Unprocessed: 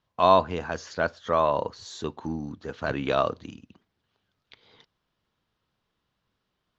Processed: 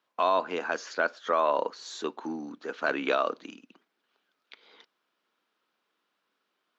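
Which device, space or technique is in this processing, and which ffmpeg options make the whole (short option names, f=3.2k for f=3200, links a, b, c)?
laptop speaker: -af "highpass=f=260:w=0.5412,highpass=f=260:w=1.3066,equalizer=f=1.4k:t=o:w=0.5:g=5,equalizer=f=2.4k:t=o:w=0.33:g=4,alimiter=limit=-13.5dB:level=0:latency=1:release=114"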